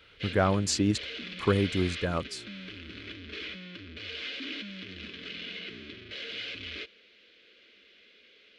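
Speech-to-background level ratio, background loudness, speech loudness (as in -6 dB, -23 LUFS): 10.5 dB, -39.0 LUFS, -28.5 LUFS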